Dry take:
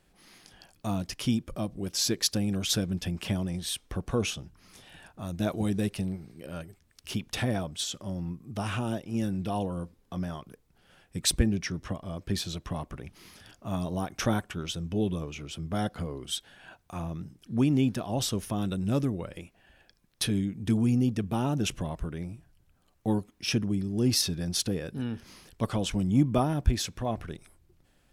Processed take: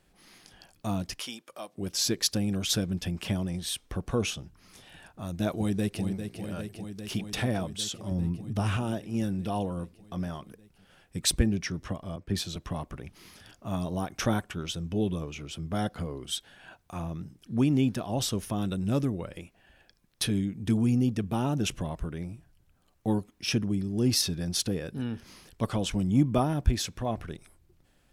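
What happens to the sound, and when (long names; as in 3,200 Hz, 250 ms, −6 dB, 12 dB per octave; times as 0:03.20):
0:01.20–0:01.78: high-pass filter 680 Hz
0:05.54–0:06.04: delay throw 400 ms, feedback 80%, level −8 dB
0:08.11–0:08.77: low-shelf EQ 210 Hz +8.5 dB
0:12.16–0:12.56: multiband upward and downward expander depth 40%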